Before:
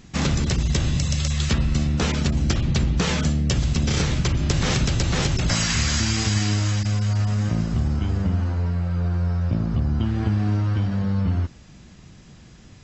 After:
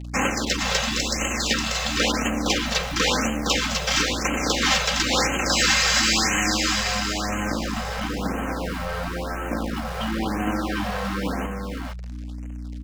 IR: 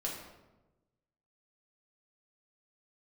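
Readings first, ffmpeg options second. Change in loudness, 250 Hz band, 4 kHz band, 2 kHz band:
0.0 dB, -1.5 dB, +6.0 dB, +7.5 dB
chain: -filter_complex "[0:a]highpass=78,aecho=1:1:3.8:0.59,asplit=2[s0][s1];[s1]acompressor=threshold=0.0158:ratio=6,volume=1.26[s2];[s0][s2]amix=inputs=2:normalize=0,aeval=exprs='sgn(val(0))*max(abs(val(0))-0.0178,0)':c=same,asplit=2[s3][s4];[s4]highpass=f=720:p=1,volume=3.98,asoftclip=type=tanh:threshold=0.447[s5];[s3][s5]amix=inputs=2:normalize=0,lowpass=f=4200:p=1,volume=0.501,acrossover=split=190|2800[s6][s7][s8];[s6]aeval=exprs='(mod(42.2*val(0)+1,2)-1)/42.2':c=same[s9];[s9][s7][s8]amix=inputs=3:normalize=0,aeval=exprs='val(0)+0.0224*(sin(2*PI*60*n/s)+sin(2*PI*2*60*n/s)/2+sin(2*PI*3*60*n/s)/3+sin(2*PI*4*60*n/s)/4+sin(2*PI*5*60*n/s)/5)':c=same,aecho=1:1:463:0.596,afftfilt=real='re*(1-between(b*sr/1024,270*pow(4500/270,0.5+0.5*sin(2*PI*0.98*pts/sr))/1.41,270*pow(4500/270,0.5+0.5*sin(2*PI*0.98*pts/sr))*1.41))':imag='im*(1-between(b*sr/1024,270*pow(4500/270,0.5+0.5*sin(2*PI*0.98*pts/sr))/1.41,270*pow(4500/270,0.5+0.5*sin(2*PI*0.98*pts/sr))*1.41))':win_size=1024:overlap=0.75"

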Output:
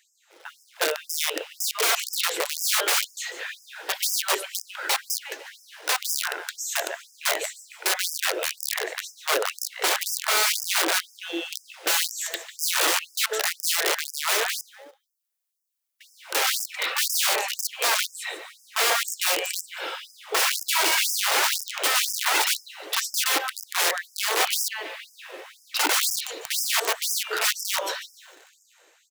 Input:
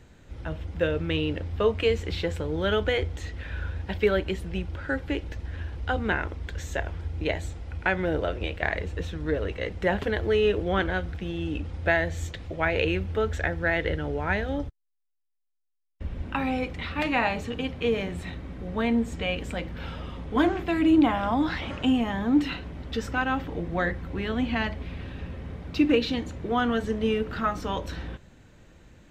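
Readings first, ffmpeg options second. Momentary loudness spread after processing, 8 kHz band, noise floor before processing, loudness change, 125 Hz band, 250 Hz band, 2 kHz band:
12 LU, +26.5 dB, -54 dBFS, +3.5 dB, under -40 dB, -17.0 dB, +4.0 dB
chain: -filter_complex "[0:a]highpass=160,highshelf=f=5500:g=11,dynaudnorm=f=490:g=5:m=2.66,asplit=2[s0][s1];[s1]aecho=0:1:146|292|438:0.251|0.0829|0.0274[s2];[s0][s2]amix=inputs=2:normalize=0,aeval=exprs='(mod(6.68*val(0)+1,2)-1)/6.68':c=same,asplit=2[s3][s4];[s4]acrusher=bits=6:mix=0:aa=0.000001,volume=0.398[s5];[s3][s5]amix=inputs=2:normalize=0,afftfilt=real='re*gte(b*sr/1024,300*pow(5000/300,0.5+0.5*sin(2*PI*2*pts/sr)))':imag='im*gte(b*sr/1024,300*pow(5000/300,0.5+0.5*sin(2*PI*2*pts/sr)))':win_size=1024:overlap=0.75,volume=0.75"

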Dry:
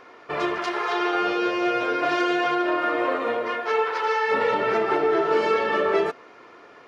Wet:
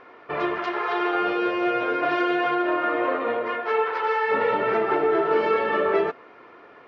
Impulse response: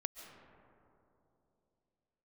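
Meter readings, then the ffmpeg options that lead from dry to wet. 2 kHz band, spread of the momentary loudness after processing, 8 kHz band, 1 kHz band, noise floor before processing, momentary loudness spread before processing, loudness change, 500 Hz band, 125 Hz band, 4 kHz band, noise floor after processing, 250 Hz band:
-0.5 dB, 5 LU, no reading, 0.0 dB, -49 dBFS, 5 LU, 0.0 dB, 0.0 dB, 0.0 dB, -4.0 dB, -49 dBFS, 0.0 dB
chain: -af "lowpass=2900"

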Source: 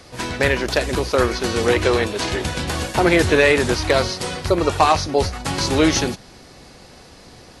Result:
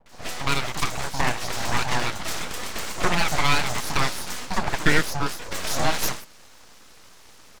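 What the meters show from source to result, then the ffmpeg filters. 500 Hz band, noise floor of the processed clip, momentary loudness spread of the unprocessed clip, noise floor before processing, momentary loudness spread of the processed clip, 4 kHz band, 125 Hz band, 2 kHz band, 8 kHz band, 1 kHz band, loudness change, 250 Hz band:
-14.5 dB, -48 dBFS, 9 LU, -45 dBFS, 9 LU, -4.0 dB, -6.5 dB, -4.5 dB, -2.5 dB, -5.0 dB, -7.0 dB, -10.5 dB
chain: -filter_complex "[0:a]highpass=f=250:w=0.5412,highpass=f=250:w=1.3066,equalizer=f=400:t=q:w=4:g=-4,equalizer=f=2700:t=q:w=4:g=-8,equalizer=f=6700:t=q:w=4:g=5,lowpass=f=8400:w=0.5412,lowpass=f=8400:w=1.3066,acrossover=split=410|4700[s0][s1][s2];[s1]adelay=60[s3];[s2]adelay=90[s4];[s0][s3][s4]amix=inputs=3:normalize=0,aeval=exprs='abs(val(0))':c=same"

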